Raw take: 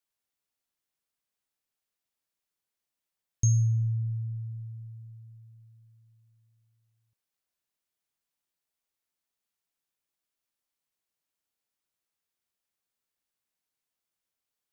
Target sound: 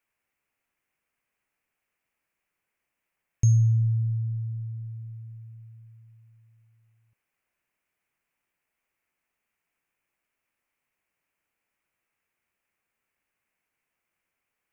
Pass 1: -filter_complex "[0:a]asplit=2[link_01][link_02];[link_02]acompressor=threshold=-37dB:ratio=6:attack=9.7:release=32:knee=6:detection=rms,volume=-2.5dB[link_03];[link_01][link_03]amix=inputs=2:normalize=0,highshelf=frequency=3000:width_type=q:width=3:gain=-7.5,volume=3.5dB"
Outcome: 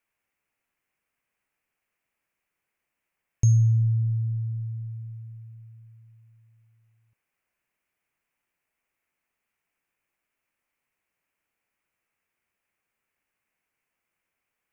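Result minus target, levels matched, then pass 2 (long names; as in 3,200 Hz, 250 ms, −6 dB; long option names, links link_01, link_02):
downward compressor: peak gain reduction −9 dB
-filter_complex "[0:a]asplit=2[link_01][link_02];[link_02]acompressor=threshold=-48dB:ratio=6:attack=9.7:release=32:knee=6:detection=rms,volume=-2.5dB[link_03];[link_01][link_03]amix=inputs=2:normalize=0,highshelf=frequency=3000:width_type=q:width=3:gain=-7.5,volume=3.5dB"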